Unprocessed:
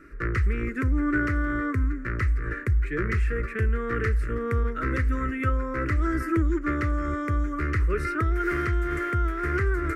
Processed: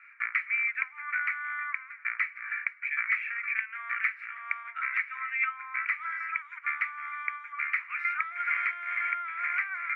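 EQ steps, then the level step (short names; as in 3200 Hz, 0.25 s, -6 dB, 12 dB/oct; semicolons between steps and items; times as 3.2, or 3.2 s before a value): brick-wall FIR high-pass 700 Hz; synth low-pass 2300 Hz, resonance Q 16; -7.0 dB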